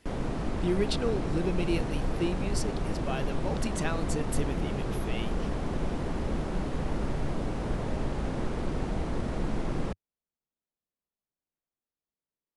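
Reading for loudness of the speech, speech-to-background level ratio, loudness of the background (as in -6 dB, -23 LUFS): -34.5 LUFS, -1.0 dB, -33.5 LUFS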